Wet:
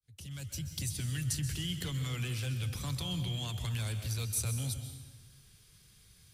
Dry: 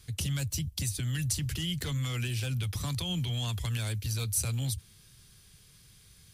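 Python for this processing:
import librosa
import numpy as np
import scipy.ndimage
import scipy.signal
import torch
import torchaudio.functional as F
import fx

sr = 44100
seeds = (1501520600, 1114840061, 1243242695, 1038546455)

y = fx.fade_in_head(x, sr, length_s=0.79)
y = fx.rev_plate(y, sr, seeds[0], rt60_s=1.3, hf_ratio=0.8, predelay_ms=115, drr_db=7.0)
y = y * librosa.db_to_amplitude(-4.0)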